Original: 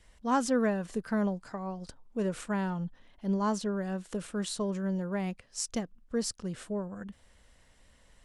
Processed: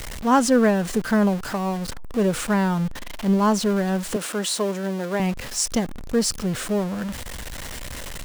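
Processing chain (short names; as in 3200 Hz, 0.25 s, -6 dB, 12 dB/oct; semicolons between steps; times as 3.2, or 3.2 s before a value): zero-crossing step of -37 dBFS; 4.16–5.2 HPF 280 Hz 12 dB/oct; gain +9 dB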